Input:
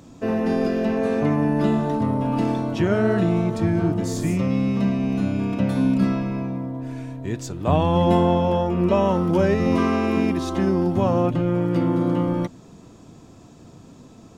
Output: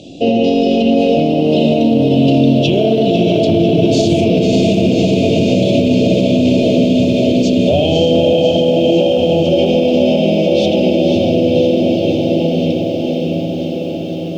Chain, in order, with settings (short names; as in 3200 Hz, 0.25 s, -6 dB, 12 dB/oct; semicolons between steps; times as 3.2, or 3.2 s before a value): Doppler pass-by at 3.44, 17 m/s, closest 18 m; elliptic band-stop 640–2900 Hz, stop band 40 dB; low shelf 130 Hz -12 dB; diffused feedback echo 0.584 s, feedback 69%, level -4 dB; compressor 4:1, threshold -33 dBFS, peak gain reduction 12.5 dB; LPF 3900 Hz 12 dB/oct; bell 2500 Hz +10 dB 2.9 oct; notches 60/120/180/240/300/360/420/480/540 Hz; spring tank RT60 2.1 s, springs 44 ms, chirp 35 ms, DRR 6 dB; maximiser +28 dB; lo-fi delay 0.498 s, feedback 80%, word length 7-bit, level -12.5 dB; gain -3 dB